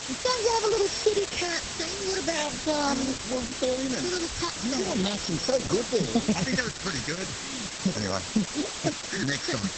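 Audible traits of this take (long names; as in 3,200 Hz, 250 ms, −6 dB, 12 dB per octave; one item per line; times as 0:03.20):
a buzz of ramps at a fixed pitch in blocks of 8 samples
phaser sweep stages 6, 0.4 Hz, lowest notch 730–3,100 Hz
a quantiser's noise floor 6 bits, dither triangular
Opus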